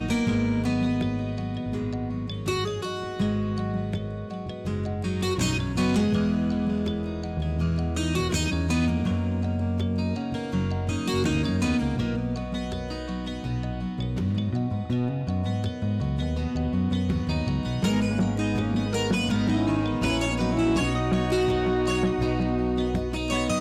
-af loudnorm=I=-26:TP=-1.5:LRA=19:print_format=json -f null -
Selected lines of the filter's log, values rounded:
"input_i" : "-26.3",
"input_tp" : "-15.2",
"input_lra" : "4.3",
"input_thresh" : "-36.3",